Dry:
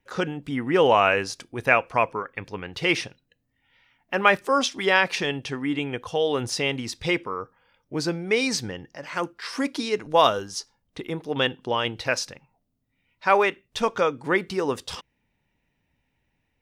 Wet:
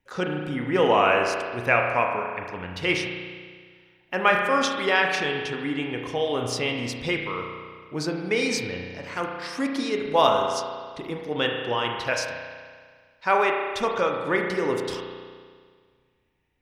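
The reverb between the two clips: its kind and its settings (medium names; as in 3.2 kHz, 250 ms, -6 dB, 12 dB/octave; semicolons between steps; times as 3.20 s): spring tank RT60 1.8 s, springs 33 ms, chirp 45 ms, DRR 1.5 dB; trim -2.5 dB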